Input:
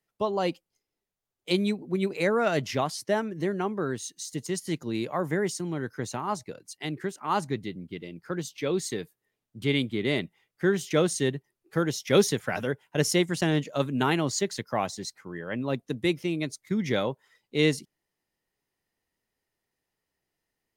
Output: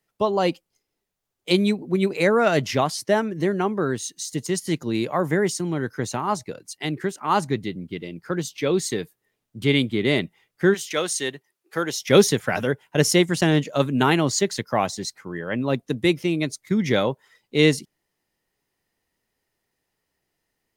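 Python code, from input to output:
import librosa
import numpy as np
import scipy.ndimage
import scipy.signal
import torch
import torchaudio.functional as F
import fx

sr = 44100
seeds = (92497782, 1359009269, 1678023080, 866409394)

y = fx.highpass(x, sr, hz=fx.line((10.73, 1400.0), (11.99, 560.0)), slope=6, at=(10.73, 11.99), fade=0.02)
y = y * librosa.db_to_amplitude(6.0)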